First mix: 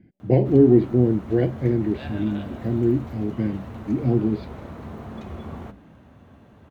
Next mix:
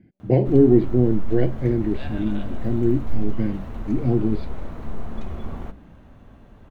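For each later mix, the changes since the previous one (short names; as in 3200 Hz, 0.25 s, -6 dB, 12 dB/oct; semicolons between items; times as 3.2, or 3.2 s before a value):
background: remove HPF 71 Hz 24 dB/oct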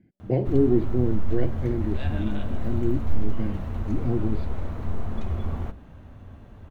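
speech -6.0 dB; background: add bell 89 Hz +10 dB 0.53 oct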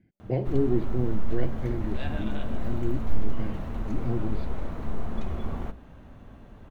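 speech: add bell 270 Hz -5.5 dB 2.5 oct; background: add bell 89 Hz -10 dB 0.53 oct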